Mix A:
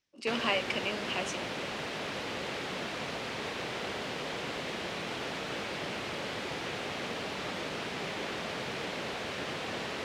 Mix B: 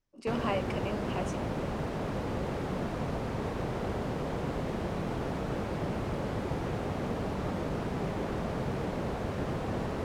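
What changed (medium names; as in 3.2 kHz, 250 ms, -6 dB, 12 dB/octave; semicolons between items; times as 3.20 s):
background: add bass shelf 420 Hz +7.5 dB; master: remove frequency weighting D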